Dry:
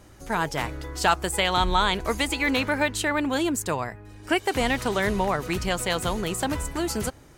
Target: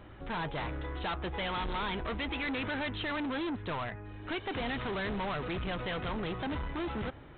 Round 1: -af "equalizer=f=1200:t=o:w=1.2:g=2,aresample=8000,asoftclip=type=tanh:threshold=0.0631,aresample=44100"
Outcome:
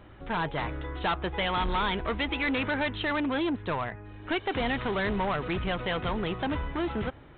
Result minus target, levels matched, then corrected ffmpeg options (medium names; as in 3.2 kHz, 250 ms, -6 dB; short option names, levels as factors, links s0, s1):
saturation: distortion -4 dB
-af "equalizer=f=1200:t=o:w=1.2:g=2,aresample=8000,asoftclip=type=tanh:threshold=0.0237,aresample=44100"